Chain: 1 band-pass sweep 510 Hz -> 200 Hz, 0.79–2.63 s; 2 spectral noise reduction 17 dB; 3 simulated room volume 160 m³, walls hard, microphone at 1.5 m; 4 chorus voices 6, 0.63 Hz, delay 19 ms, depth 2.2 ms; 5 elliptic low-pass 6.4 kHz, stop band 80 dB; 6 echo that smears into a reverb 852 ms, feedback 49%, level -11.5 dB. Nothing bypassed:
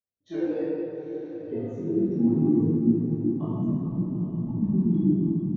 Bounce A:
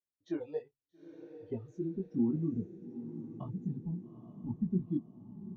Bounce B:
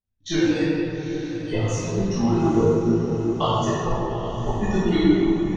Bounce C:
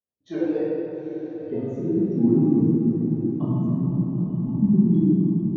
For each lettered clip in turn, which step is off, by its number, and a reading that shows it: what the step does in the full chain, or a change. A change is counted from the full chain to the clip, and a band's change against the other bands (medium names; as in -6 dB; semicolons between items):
3, momentary loudness spread change +7 LU; 1, 1 kHz band +17.0 dB; 4, loudness change +3.5 LU